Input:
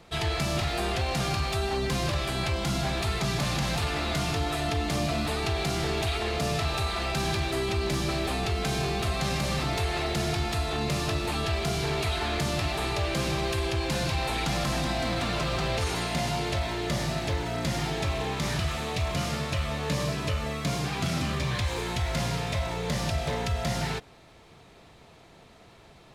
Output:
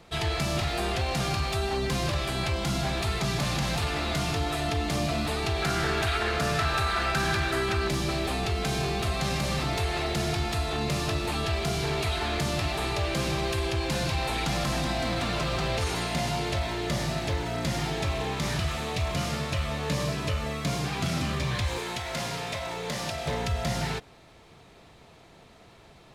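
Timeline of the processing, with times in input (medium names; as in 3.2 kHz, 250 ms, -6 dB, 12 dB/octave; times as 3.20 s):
5.62–7.88 s: peaking EQ 1.5 kHz +11.5 dB 0.6 oct
21.78–23.26 s: high-pass 300 Hz 6 dB/octave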